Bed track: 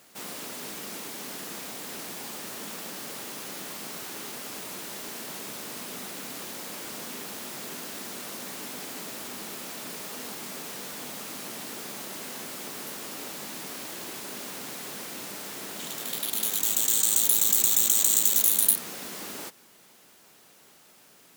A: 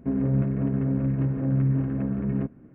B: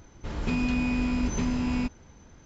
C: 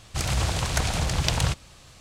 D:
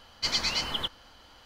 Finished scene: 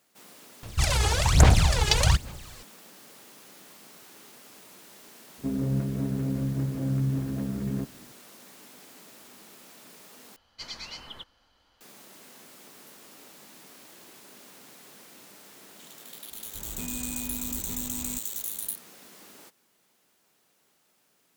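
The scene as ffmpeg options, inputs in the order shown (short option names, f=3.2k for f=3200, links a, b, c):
-filter_complex "[0:a]volume=-12.5dB[a];[3:a]aphaser=in_gain=1:out_gain=1:delay=2.4:decay=0.76:speed=1.2:type=sinusoidal[b];[a]asplit=2[c][d];[c]atrim=end=10.364[e];[4:a]atrim=end=1.45,asetpts=PTS-STARTPTS,volume=-12dB[f];[d]atrim=start=11.806[g];[b]atrim=end=2,asetpts=PTS-STARTPTS,volume=-1dB,afade=t=in:d=0.004:c=hsin,afade=t=out:st=1.996:d=0.004:c=hsin,adelay=630[h];[1:a]atrim=end=2.74,asetpts=PTS-STARTPTS,volume=-4dB,afade=t=in:d=0.004:c=hsin,afade=t=out:st=2.736:d=0.004:c=hsin,adelay=5380[i];[2:a]atrim=end=2.45,asetpts=PTS-STARTPTS,volume=-11.5dB,afade=t=in:d=0.004:c=hsin,afade=t=out:st=2.446:d=0.004:c=hsin,adelay=16310[j];[e][f]acrossfade=d=0.004:c1=hsin:c2=hsin[k];[k][g]acrossfade=d=0.004:c1=hsin:c2=hsin[l];[l][h][i][j]amix=inputs=4:normalize=0"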